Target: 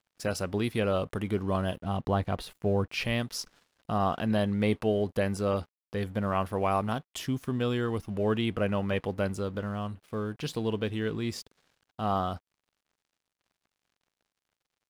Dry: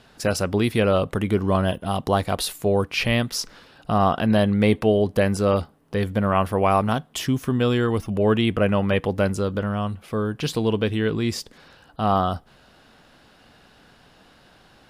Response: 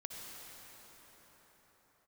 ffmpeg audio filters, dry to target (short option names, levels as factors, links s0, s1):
-filter_complex "[0:a]asettb=1/sr,asplit=3[s0][s1][s2];[s0]atrim=end=1.804[s3];[s1]atrim=start=1.8:end=2.88,asetpts=PTS-STARTPTS,afade=t=in:d=0.004:c=qsin,afade=t=out:st=1.076:d=0.004:c=qsin,bass=f=250:g=5,treble=f=4000:g=-12[s4];[s2]atrim=start=2.876[s5];[s3][s4]acrossfade=d=0.004:c1=hsin:c2=qsin[s6];[s6][s5]acrossfade=d=0.004:c1=qsin:c2=hsin,aeval=exprs='sgn(val(0))*max(abs(val(0))-0.00473,0)':c=same,volume=0.398"